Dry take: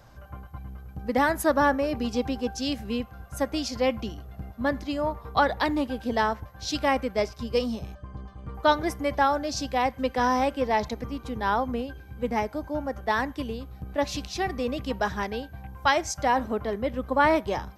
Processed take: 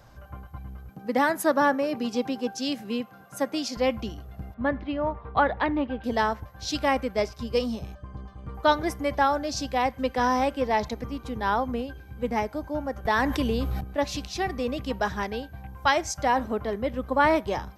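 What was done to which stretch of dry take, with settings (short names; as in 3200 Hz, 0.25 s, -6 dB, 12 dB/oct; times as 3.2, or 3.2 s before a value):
0.89–3.77 HPF 150 Hz 24 dB/oct
4.54–6.04 LPF 3000 Hz 24 dB/oct
13.05–13.81 fast leveller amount 70%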